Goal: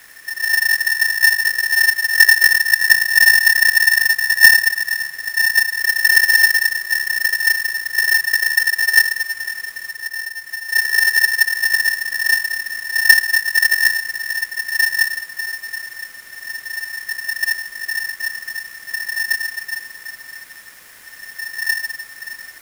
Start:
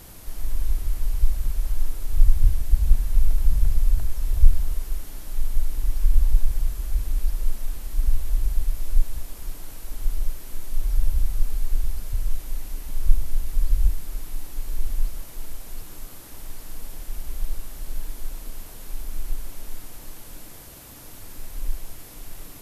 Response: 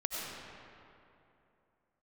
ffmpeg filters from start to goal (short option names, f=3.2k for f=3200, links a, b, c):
-filter_complex "[0:a]asettb=1/sr,asplit=3[a][b][c];[a]atrim=end=9.884[d];[b]atrim=start=9.88:end=10.68,asetpts=PTS-STARTPTS,afade=t=in:d=0.004:c=qsin,afade=t=out:st=0.796:d=0.004:c=qsin,acompressor=threshold=-27dB:ratio=6[e];[c]atrim=start=10.676[f];[d][e]acrossfade=d=0.004:c1=hsin:c2=qsin[g];[g][f]acrossfade=d=0.004:c1=qsin:c2=hsin,asplit=2[h][i];[1:a]atrim=start_sample=2205[j];[i][j]afir=irnorm=-1:irlink=0,volume=-8dB[k];[h][k]amix=inputs=2:normalize=0,aeval=exprs='val(0)*sgn(sin(2*PI*1800*n/s))':c=same,volume=-2.5dB"